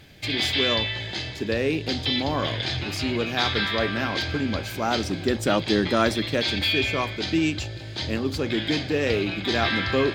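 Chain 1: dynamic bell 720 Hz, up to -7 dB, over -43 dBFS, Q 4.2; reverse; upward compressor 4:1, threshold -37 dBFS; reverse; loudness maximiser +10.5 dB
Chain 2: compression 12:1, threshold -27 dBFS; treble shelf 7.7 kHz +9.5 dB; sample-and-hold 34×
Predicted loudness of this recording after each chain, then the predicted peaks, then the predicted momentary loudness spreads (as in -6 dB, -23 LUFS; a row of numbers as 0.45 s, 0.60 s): -14.5 LUFS, -31.5 LUFS; -1.0 dBFS, -17.0 dBFS; 6 LU, 2 LU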